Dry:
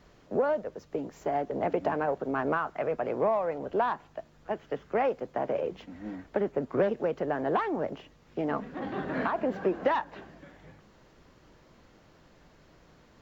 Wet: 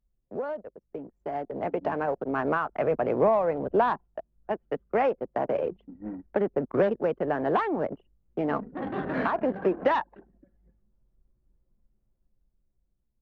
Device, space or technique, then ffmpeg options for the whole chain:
voice memo with heavy noise removal: -filter_complex "[0:a]asettb=1/sr,asplit=3[a][b][c];[a]atrim=end=2.704[d];[b]atrim=start=2.7:end=4.05,asetpts=PTS-STARTPTS,afade=t=in:d=0.004:c=qsin,afade=t=out:st=1.346:d=0.004:c=qsin,lowshelf=f=450:g=5[e];[c]atrim=start=4.046[f];[d][e]acrossfade=d=0.004:c1=hsin:c2=qsin[g];[g][f]acrossfade=d=0.004:c1=qsin:c2=hsin,anlmdn=1,dynaudnorm=f=400:g=9:m=9dB,volume=-6dB"

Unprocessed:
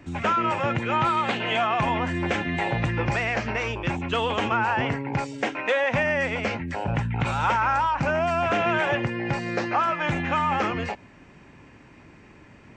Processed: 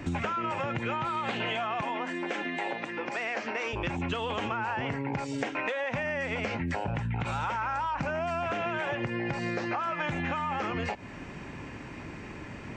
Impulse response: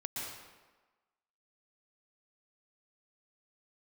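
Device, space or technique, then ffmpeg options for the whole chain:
serial compression, leveller first: -filter_complex "[0:a]acompressor=threshold=-27dB:ratio=6,acompressor=threshold=-37dB:ratio=6,asettb=1/sr,asplit=3[a][b][c];[a]atrim=end=1.814[d];[b]atrim=start=1.81:end=3.73,asetpts=PTS-STARTPTS,afade=t=in:d=0.004:c=qsin,afade=t=out:st=1.916:d=0.004:c=qsin,highpass=f=240:w=0.5412,highpass=f=240:w=1.3066[e];[c]atrim=start=3.726[f];[d][e]acrossfade=d=0.004:c1=hsin:c2=qsin[g];[g][f]acrossfade=d=0.004:c1=qsin:c2=hsin,volume=8dB"

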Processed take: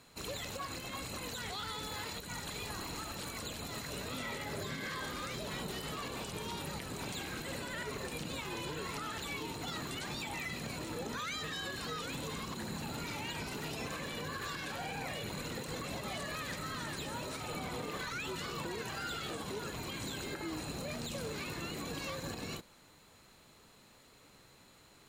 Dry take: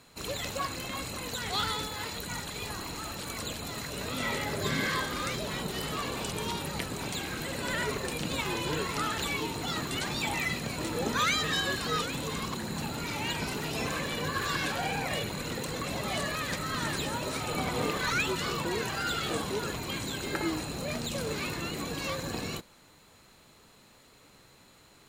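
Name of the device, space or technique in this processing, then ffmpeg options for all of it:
stacked limiters: -af "alimiter=limit=-22.5dB:level=0:latency=1:release=244,alimiter=level_in=4dB:limit=-24dB:level=0:latency=1:release=75,volume=-4dB,volume=-3dB"

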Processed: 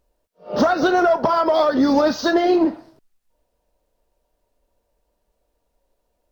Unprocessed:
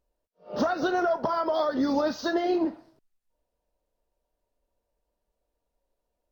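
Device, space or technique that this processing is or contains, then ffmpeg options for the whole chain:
parallel distortion: -filter_complex "[0:a]asplit=2[a][b];[b]asoftclip=type=hard:threshold=-26.5dB,volume=-11dB[c];[a][c]amix=inputs=2:normalize=0,volume=7.5dB"

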